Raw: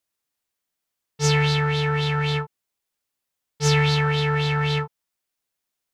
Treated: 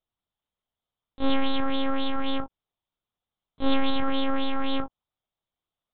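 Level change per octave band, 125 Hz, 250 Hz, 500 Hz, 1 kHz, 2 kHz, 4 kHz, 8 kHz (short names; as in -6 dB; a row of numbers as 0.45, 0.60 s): -25.0 dB, +0.5 dB, -6.0 dB, -4.0 dB, -11.0 dB, -6.0 dB, under -40 dB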